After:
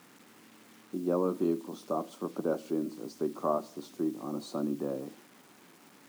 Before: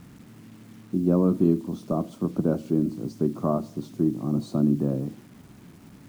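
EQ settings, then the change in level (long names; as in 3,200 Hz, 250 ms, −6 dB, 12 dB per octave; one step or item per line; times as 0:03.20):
high-pass filter 460 Hz 12 dB per octave
notch filter 650 Hz, Q 15
0.0 dB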